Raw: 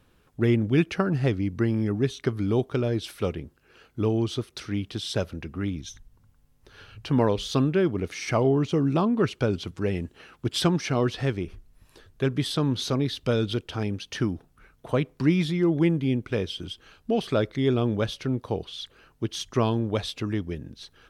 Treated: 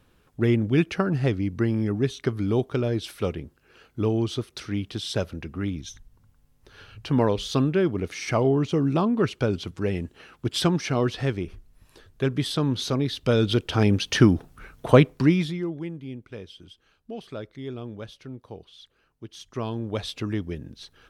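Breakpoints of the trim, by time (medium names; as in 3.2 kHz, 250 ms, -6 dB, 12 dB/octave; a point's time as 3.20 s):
13.09 s +0.5 dB
13.96 s +10 dB
14.98 s +10 dB
15.51 s -3 dB
15.82 s -12 dB
19.27 s -12 dB
20.13 s 0 dB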